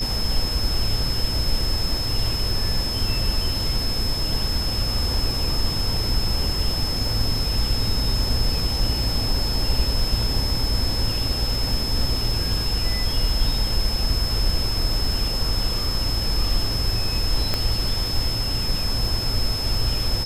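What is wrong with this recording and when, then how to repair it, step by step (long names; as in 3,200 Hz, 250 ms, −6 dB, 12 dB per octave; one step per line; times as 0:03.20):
surface crackle 29 per second −29 dBFS
whistle 5,200 Hz −26 dBFS
0:17.54: click −8 dBFS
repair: click removal
notch filter 5,200 Hz, Q 30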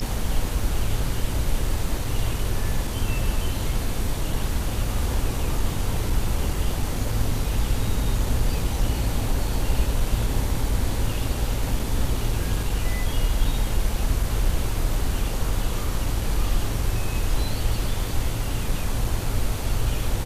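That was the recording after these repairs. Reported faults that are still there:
none of them is left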